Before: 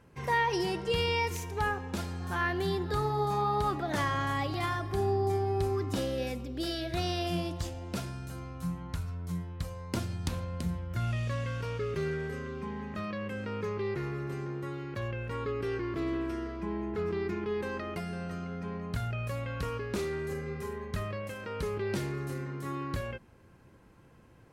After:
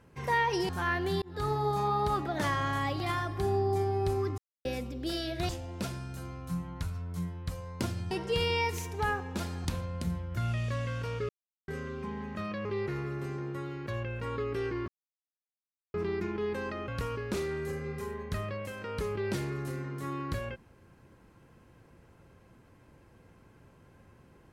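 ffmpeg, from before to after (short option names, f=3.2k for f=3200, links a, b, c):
-filter_complex "[0:a]asplit=14[a][b][c][d][e][f][g][h][i][j][k][l][m][n];[a]atrim=end=0.692[o];[b]atrim=start=2.228:end=2.76,asetpts=PTS-STARTPTS,afade=t=out:st=0.528:d=0.004:c=hsin[p];[c]atrim=start=2.76:end=5.92,asetpts=PTS-STARTPTS,afade=t=in:d=0.27,afade=t=out:st=3.156:d=0.004:c=hsin[q];[d]atrim=start=5.92:end=6.19,asetpts=PTS-STARTPTS,volume=0[r];[e]atrim=start=6.19:end=7.032,asetpts=PTS-STARTPTS,afade=t=in:d=0.004:c=hsin[s];[f]atrim=start=7.618:end=10.242[t];[g]atrim=start=0.688:end=2.232[u];[h]atrim=start=10.238:end=11.88,asetpts=PTS-STARTPTS,afade=t=out:st=1.638:d=0.004:c=hsin[v];[i]atrim=start=11.88:end=12.27,asetpts=PTS-STARTPTS,volume=0[w];[j]atrim=start=12.27:end=13.242,asetpts=PTS-STARTPTS,afade=t=in:d=0.004:c=hsin[x];[k]atrim=start=13.728:end=15.96,asetpts=PTS-STARTPTS,afade=t=out:st=2.228:d=0.004:c=hsin[y];[l]atrim=start=15.96:end=17.02,asetpts=PTS-STARTPTS,volume=0[z];[m]atrim=start=17.02:end=17.962,asetpts=PTS-STARTPTS,afade=t=in:d=0.004:c=hsin[aa];[n]atrim=start=19.498[ab];[p][q][r][s]concat=n=4:v=0:a=1[ac];[o][ac]acrossfade=d=0.004:c1=hsin:c2=hsin[ad];[ad][t]acrossfade=d=0.004:c1=hsin:c2=hsin[ae];[ae][u]acrossfade=d=0.004:c1=hsin:c2=hsin[af];[v][w][x]concat=n=3:v=0:a=1[ag];[af][ag]acrossfade=d=0.004:c1=hsin:c2=hsin[ah];[y][z][aa]concat=n=3:v=0:a=1[ai];[ah][ai]acrossfade=d=0.004:c1=hsin:c2=hsin[aj];[aj][ab]acrossfade=d=0.004:c1=hsin:c2=hsin"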